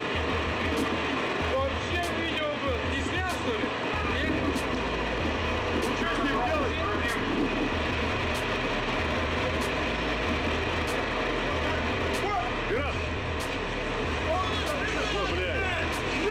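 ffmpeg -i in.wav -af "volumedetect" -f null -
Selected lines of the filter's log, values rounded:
mean_volume: -28.2 dB
max_volume: -21.2 dB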